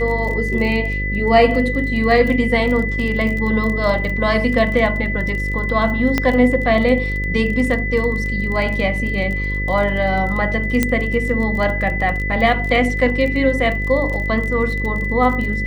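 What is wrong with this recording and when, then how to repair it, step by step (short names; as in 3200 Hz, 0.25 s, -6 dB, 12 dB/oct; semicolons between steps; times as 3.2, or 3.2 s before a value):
buzz 50 Hz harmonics 11 -23 dBFS
crackle 24/s -24 dBFS
tone 2000 Hz -23 dBFS
6.18 pop -3 dBFS
10.83 pop -2 dBFS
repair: de-click; de-hum 50 Hz, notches 11; notch 2000 Hz, Q 30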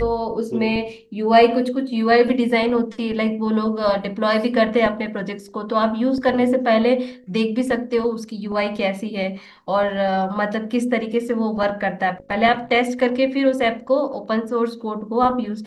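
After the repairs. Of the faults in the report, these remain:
none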